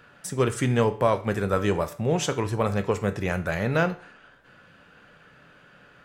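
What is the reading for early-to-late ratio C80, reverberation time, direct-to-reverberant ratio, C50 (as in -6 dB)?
18.5 dB, 0.50 s, 9.0 dB, 14.5 dB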